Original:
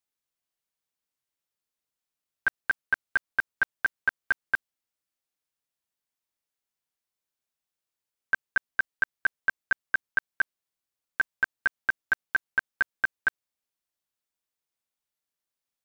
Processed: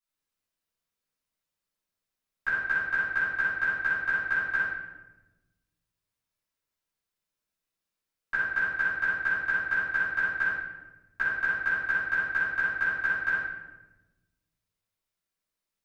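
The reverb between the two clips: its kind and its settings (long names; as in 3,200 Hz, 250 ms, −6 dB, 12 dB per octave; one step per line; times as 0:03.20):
rectangular room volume 520 cubic metres, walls mixed, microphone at 9.5 metres
level −14 dB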